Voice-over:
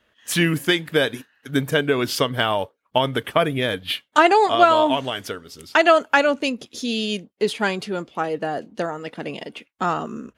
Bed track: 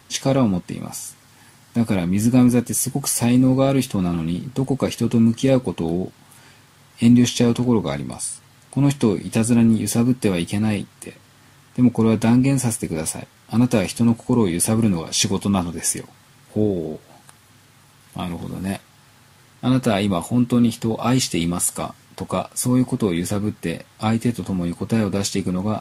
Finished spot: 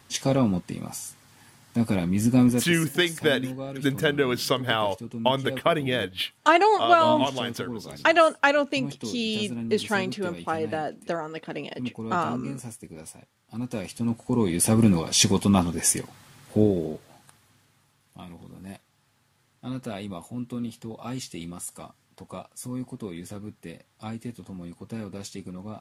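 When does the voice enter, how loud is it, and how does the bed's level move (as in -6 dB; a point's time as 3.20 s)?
2.30 s, -3.5 dB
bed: 2.48 s -4.5 dB
2.90 s -17.5 dB
13.45 s -17.5 dB
14.82 s -0.5 dB
16.61 s -0.5 dB
18.06 s -15.5 dB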